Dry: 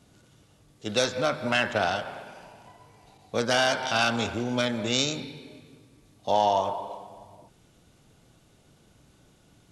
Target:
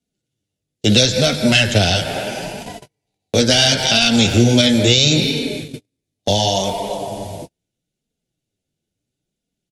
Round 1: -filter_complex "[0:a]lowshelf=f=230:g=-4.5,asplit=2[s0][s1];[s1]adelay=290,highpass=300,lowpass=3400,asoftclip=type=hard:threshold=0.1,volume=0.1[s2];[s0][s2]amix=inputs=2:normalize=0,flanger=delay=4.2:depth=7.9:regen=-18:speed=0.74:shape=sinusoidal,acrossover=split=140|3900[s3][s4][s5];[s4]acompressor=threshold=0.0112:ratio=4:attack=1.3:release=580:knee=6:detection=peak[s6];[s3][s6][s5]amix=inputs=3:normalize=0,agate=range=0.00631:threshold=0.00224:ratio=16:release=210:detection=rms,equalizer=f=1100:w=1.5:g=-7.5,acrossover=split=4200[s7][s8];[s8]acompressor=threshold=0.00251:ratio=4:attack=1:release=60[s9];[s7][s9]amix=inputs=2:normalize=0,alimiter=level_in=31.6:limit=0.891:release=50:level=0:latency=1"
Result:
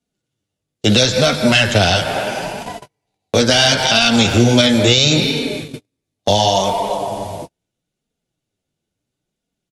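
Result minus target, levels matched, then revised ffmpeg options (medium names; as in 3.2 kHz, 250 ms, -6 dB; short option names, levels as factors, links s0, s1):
1 kHz band +5.0 dB
-filter_complex "[0:a]lowshelf=f=230:g=-4.5,asplit=2[s0][s1];[s1]adelay=290,highpass=300,lowpass=3400,asoftclip=type=hard:threshold=0.1,volume=0.1[s2];[s0][s2]amix=inputs=2:normalize=0,flanger=delay=4.2:depth=7.9:regen=-18:speed=0.74:shape=sinusoidal,acrossover=split=140|3900[s3][s4][s5];[s4]acompressor=threshold=0.0112:ratio=4:attack=1.3:release=580:knee=6:detection=peak[s6];[s3][s6][s5]amix=inputs=3:normalize=0,agate=range=0.00631:threshold=0.00224:ratio=16:release=210:detection=rms,equalizer=f=1100:w=1.5:g=-18.5,acrossover=split=4200[s7][s8];[s8]acompressor=threshold=0.00251:ratio=4:attack=1:release=60[s9];[s7][s9]amix=inputs=2:normalize=0,alimiter=level_in=31.6:limit=0.891:release=50:level=0:latency=1"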